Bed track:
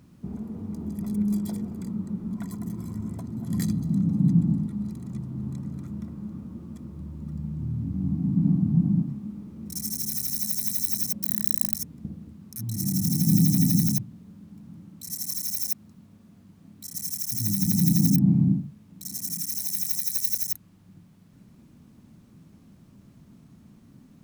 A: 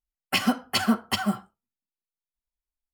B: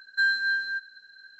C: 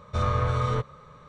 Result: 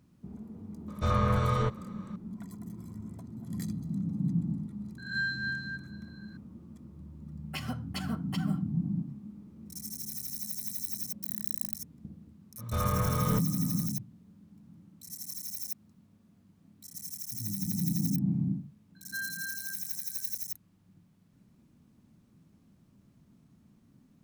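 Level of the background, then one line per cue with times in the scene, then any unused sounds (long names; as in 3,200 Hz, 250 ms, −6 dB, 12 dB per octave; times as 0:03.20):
bed track −9.5 dB
0:00.88: mix in C −2 dB
0:04.98: mix in B −8.5 dB + peak hold with a rise ahead of every peak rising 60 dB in 0.56 s
0:07.21: mix in A −15 dB
0:12.58: mix in C −5 dB
0:18.95: mix in B −14 dB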